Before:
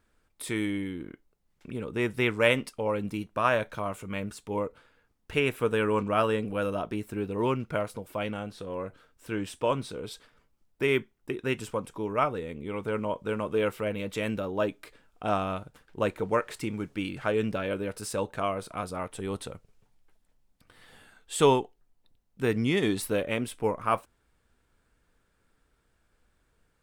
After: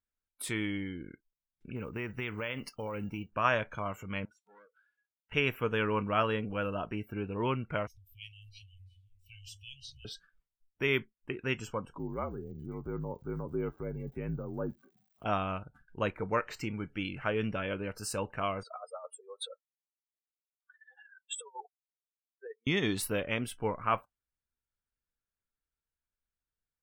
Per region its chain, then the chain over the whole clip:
0:01.76–0:03.31: log-companded quantiser 6 bits + downward compressor 12 to 1, threshold −28 dBFS
0:04.25–0:05.32: high-pass filter 760 Hz 6 dB per octave + downward compressor 2 to 1, threshold −59 dBFS + saturating transformer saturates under 2,600 Hz
0:07.87–0:10.05: inverse Chebyshev band-stop filter 220–1,100 Hz, stop band 60 dB + high-shelf EQ 7,900 Hz −2.5 dB + delay that swaps between a low-pass and a high-pass 175 ms, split 1,500 Hz, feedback 63%, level −4 dB
0:11.98–0:15.24: resonant band-pass 270 Hz, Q 0.73 + surface crackle 290 per second −42 dBFS + frequency shifter −59 Hz
0:18.63–0:22.67: expanding power law on the bin magnitudes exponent 2.5 + Butterworth high-pass 540 Hz 48 dB per octave + compressor whose output falls as the input rises −38 dBFS, ratio −0.5
whole clip: noise reduction from a noise print of the clip's start 24 dB; parametric band 420 Hz −6 dB 2.5 octaves

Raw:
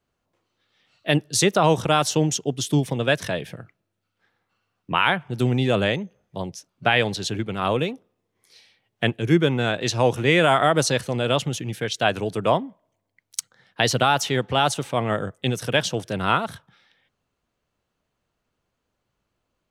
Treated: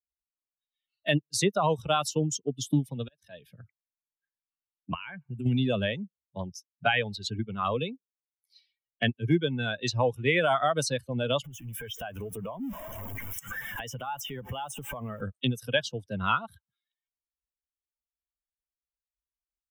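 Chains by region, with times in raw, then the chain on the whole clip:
0:02.70–0:03.58: volume swells 717 ms + highs frequency-modulated by the lows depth 0.18 ms
0:04.94–0:05.46: drawn EQ curve 150 Hz 0 dB, 590 Hz −3 dB, 840 Hz −6 dB, 2,800 Hz −2 dB, 4,300 Hz −29 dB, 7,700 Hz −6 dB, 12,000 Hz −18 dB + downward compressor 3 to 1, threshold −31 dBFS
0:11.44–0:15.21: converter with a step at zero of −27 dBFS + downward compressor 4 to 1, threshold −30 dBFS + Butterworth band-reject 4,300 Hz, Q 2.5
whole clip: spectral dynamics exaggerated over time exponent 2; multiband upward and downward compressor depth 70%

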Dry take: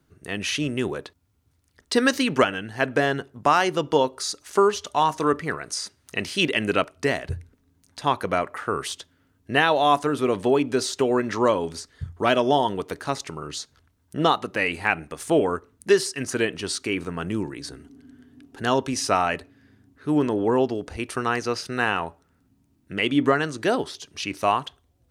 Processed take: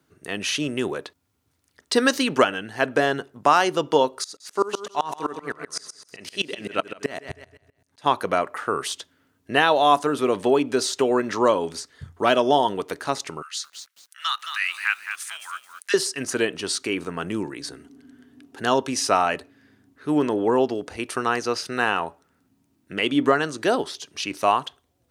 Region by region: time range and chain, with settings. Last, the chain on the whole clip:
0:04.24–0:08.06: repeating echo 160 ms, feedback 32%, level −8.5 dB + tremolo with a ramp in dB swelling 7.8 Hz, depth 25 dB
0:13.42–0:15.94: Butterworth high-pass 1,300 Hz + feedback echo at a low word length 217 ms, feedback 35%, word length 8 bits, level −8 dB
whole clip: high-pass filter 260 Hz 6 dB per octave; dynamic equaliser 2,100 Hz, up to −4 dB, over −38 dBFS, Q 2.2; level +2.5 dB

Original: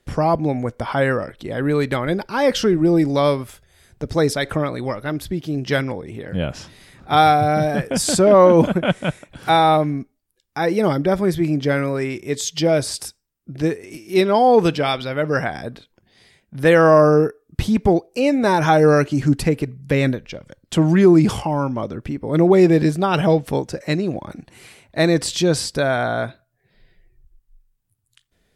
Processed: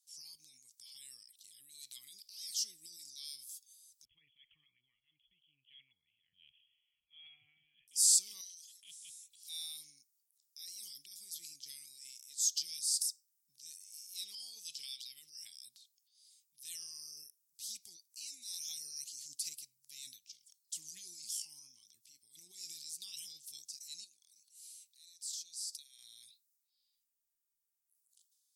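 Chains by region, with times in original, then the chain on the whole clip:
0:04.05–0:07.88: linear-phase brick-wall low-pass 3,400 Hz + parametric band 460 Hz −14.5 dB 2.4 octaves
0:08.41–0:08.83: Chebyshev high-pass with heavy ripple 1,300 Hz, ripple 9 dB + notch filter 2,300 Hz, Q 6.4
0:24.04–0:25.99: high-pass filter 360 Hz 6 dB per octave + downward compressor 3 to 1, threshold −36 dBFS
whole clip: inverse Chebyshev high-pass filter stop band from 1,600 Hz, stop band 60 dB; transient designer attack −6 dB, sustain +7 dB; level −1.5 dB

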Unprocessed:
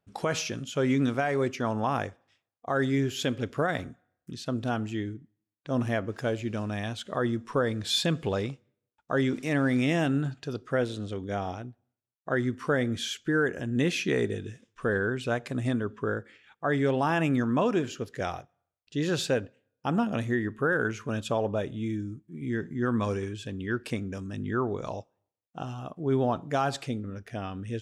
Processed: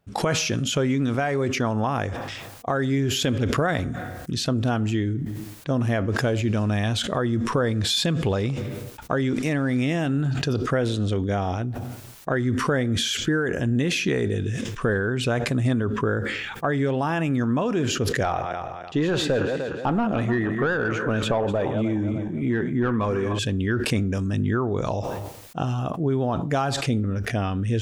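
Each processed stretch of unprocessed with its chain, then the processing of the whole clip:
0:18.23–0:23.39: feedback delay that plays each chunk backwards 150 ms, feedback 51%, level −12 dB + parametric band 5,200 Hz −3.5 dB 0.38 octaves + mid-hump overdrive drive 14 dB, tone 1,100 Hz, clips at −14.5 dBFS
whole clip: downward compressor, threshold −31 dBFS; low-shelf EQ 110 Hz +8.5 dB; level that may fall only so fast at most 29 dB per second; level +9 dB

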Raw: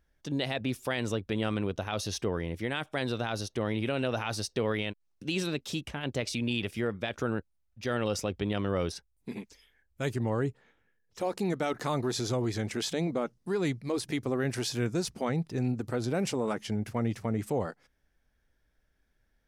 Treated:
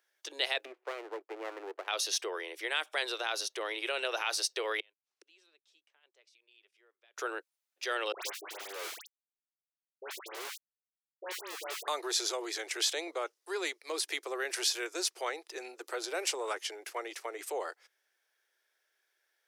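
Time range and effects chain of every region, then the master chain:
0:00.65–0:01.88: Gaussian smoothing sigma 5.9 samples + windowed peak hold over 17 samples
0:04.80–0:07.17: gate with flip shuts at −35 dBFS, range −32 dB + high-frequency loss of the air 55 metres
0:08.12–0:11.88: low-shelf EQ 140 Hz −11.5 dB + comparator with hysteresis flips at −31 dBFS + all-pass dispersion highs, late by 101 ms, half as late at 1,600 Hz
whole clip: Butterworth high-pass 340 Hz 72 dB per octave; tilt shelving filter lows −7 dB, about 890 Hz; level −1.5 dB

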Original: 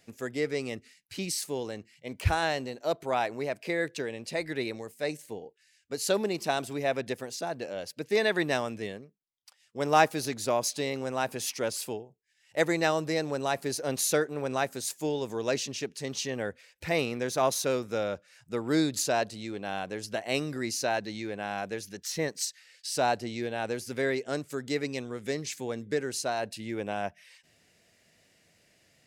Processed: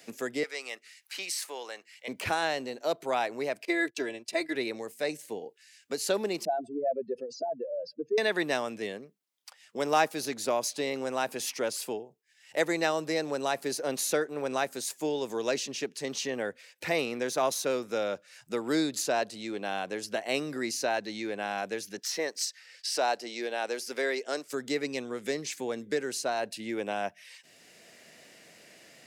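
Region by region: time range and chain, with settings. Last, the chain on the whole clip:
0:00.43–0:02.08: upward compression, threshold −53 dBFS + high-pass filter 900 Hz
0:03.65–0:04.55: comb filter 3 ms, depth 85% + noise gate −39 dBFS, range −22 dB + multiband upward and downward expander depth 40%
0:06.45–0:08.18: expanding power law on the bin magnitudes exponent 3.1 + band-pass filter 200–3,100 Hz + notch filter 2,000 Hz, Q 14
0:21.98–0:24.53: high-pass filter 370 Hz + parametric band 5,200 Hz +5.5 dB 0.42 octaves
whole clip: high-pass filter 220 Hz 12 dB per octave; multiband upward and downward compressor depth 40%

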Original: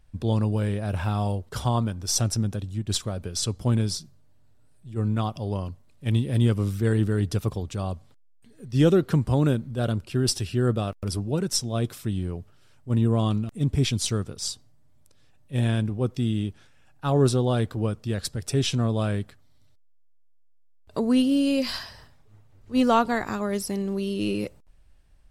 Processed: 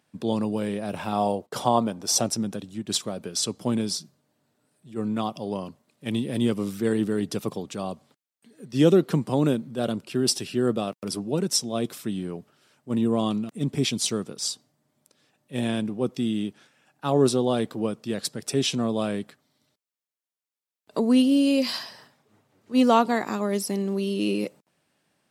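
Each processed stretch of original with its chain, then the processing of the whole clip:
0:01.12–0:02.29: parametric band 670 Hz +6.5 dB 1.6 octaves + upward compression, threshold −40 dBFS + noise gate −45 dBFS, range −20 dB
whole clip: dynamic equaliser 1,500 Hz, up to −5 dB, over −48 dBFS, Q 2.7; high-pass filter 170 Hz 24 dB per octave; level +2 dB

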